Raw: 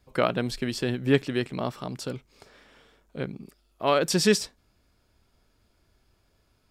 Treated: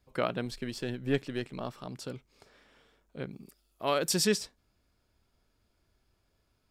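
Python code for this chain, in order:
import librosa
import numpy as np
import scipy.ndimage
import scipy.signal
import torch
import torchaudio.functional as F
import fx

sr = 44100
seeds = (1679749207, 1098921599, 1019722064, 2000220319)

y = fx.halfwave_gain(x, sr, db=-3.0, at=(0.45, 1.87))
y = fx.high_shelf(y, sr, hz=6400.0, db=11.0, at=(3.31, 4.25))
y = F.gain(torch.from_numpy(y), -6.5).numpy()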